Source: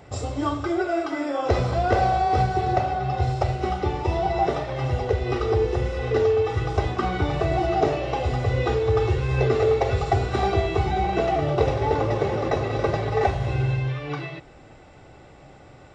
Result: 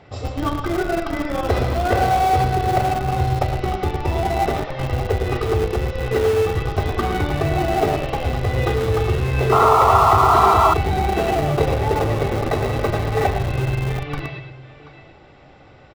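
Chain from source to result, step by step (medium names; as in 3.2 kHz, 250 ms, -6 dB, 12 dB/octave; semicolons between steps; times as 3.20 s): distance through air 230 m; hum notches 60/120/180 Hz; on a send: multi-tap echo 102/110/123/732 ms -19/-9/-12/-14.5 dB; on the sum: painted sound noise, 9.52–10.74 s, 630–1400 Hz -17 dBFS; treble shelf 2.6 kHz +11.5 dB; in parallel at -6 dB: Schmitt trigger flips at -20 dBFS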